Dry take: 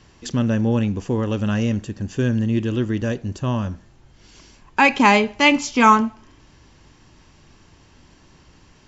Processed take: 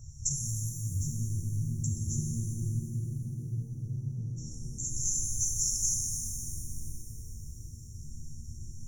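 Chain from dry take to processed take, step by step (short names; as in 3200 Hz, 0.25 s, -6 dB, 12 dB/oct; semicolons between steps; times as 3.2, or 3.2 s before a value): FFT band-reject 150–5300 Hz; band shelf 3000 Hz -14 dB; negative-ratio compressor -35 dBFS, ratio -1; spectral freeze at 2.78, 1.59 s; shimmer reverb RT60 2.8 s, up +7 st, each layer -8 dB, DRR -0.5 dB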